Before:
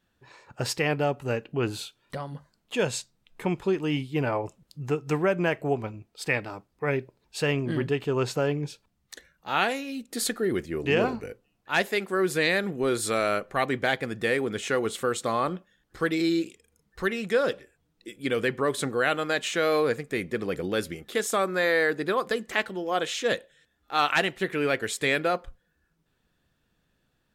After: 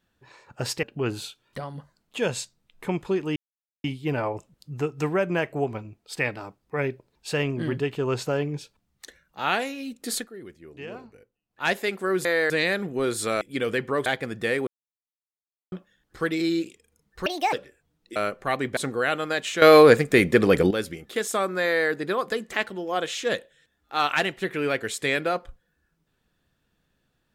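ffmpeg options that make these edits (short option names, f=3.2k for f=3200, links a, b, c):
-filter_complex "[0:a]asplit=17[a][b][c][d][e][f][g][h][i][j][k][l][m][n][o][p][q];[a]atrim=end=0.832[r];[b]atrim=start=1.398:end=3.93,asetpts=PTS-STARTPTS,afade=t=out:st=2.528:d=0.004:c=hsin,apad=pad_dur=0.48[s];[c]atrim=start=3.93:end=10.38,asetpts=PTS-STARTPTS,afade=t=in:d=0.004:c=hsin,afade=t=out:st=6.3:d=0.15:silence=0.177828[t];[d]atrim=start=10.38:end=11.57,asetpts=PTS-STARTPTS,volume=-15dB[u];[e]atrim=start=11.57:end=12.342,asetpts=PTS-STARTPTS,afade=t=in:d=0.15:silence=0.177828[v];[f]atrim=start=21.638:end=21.892[w];[g]atrim=start=12.338:end=13.252[x];[h]atrim=start=18.108:end=18.762[y];[i]atrim=start=13.858:end=14.47,asetpts=PTS-STARTPTS,afade=t=out:st=0.608:d=0.004:c=hsin[z];[j]atrim=start=14.47:end=15.52,asetpts=PTS-STARTPTS,volume=0[aa];[k]atrim=start=15.52:end=17.064,asetpts=PTS-STARTPTS,afade=t=in:d=0.004:c=hsin[ab];[l]atrim=start=17.06:end=17.48,asetpts=PTS-STARTPTS,asetrate=68796,aresample=44100,atrim=end_sample=11873,asetpts=PTS-STARTPTS[ac];[m]atrim=start=17.476:end=18.112[ad];[n]atrim=start=13.248:end=13.862[ae];[o]atrim=start=18.758:end=19.612[af];[p]atrim=start=19.608:end=20.702,asetpts=PTS-STARTPTS,volume=11.5dB[ag];[q]atrim=start=20.698[ah];[s][t][u][v]concat=n=4:v=0:a=1[ai];[r][ai]acrossfade=d=0.004:c1=hsin:c2=hsin[aj];[aj][w]acrossfade=d=0.004:c1=hsin:c2=hsin[ak];[ak][x]acrossfade=d=0.004:c1=hsin:c2=hsin[al];[al][y]acrossfade=d=0.004:c1=hsin:c2=hsin[am];[z][aa][ab]concat=n=3:v=0:a=1[an];[am][an]acrossfade=d=0.004:c1=hsin:c2=hsin[ao];[ao][ac]acrossfade=d=0.004:c1=hsin:c2=hsin[ap];[ap][ad]acrossfade=d=0.004:c1=hsin:c2=hsin[aq];[aq][ae]acrossfade=d=0.004:c1=hsin:c2=hsin[ar];[ar][af]acrossfade=d=0.004:c1=hsin:c2=hsin[as];[as][ag]acrossfade=d=0.004:c1=hsin:c2=hsin[at];[at][ah]acrossfade=d=0.004:c1=hsin:c2=hsin"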